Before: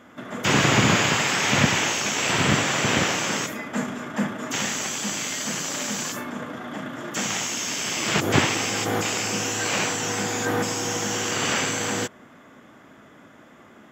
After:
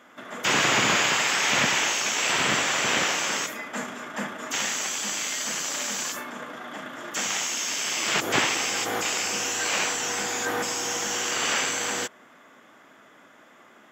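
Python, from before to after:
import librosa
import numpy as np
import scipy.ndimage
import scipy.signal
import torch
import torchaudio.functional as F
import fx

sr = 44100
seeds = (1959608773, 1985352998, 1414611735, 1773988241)

y = fx.highpass(x, sr, hz=640.0, slope=6)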